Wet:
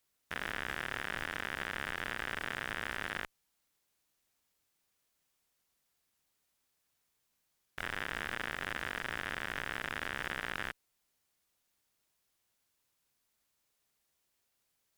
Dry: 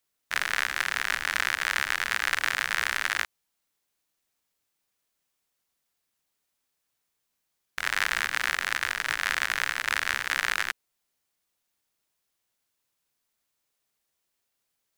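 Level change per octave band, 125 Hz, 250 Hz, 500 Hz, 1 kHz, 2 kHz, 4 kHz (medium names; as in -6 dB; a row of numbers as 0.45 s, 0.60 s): +3.0 dB, +3.5 dB, -1.0 dB, -9.0 dB, -11.0 dB, -12.0 dB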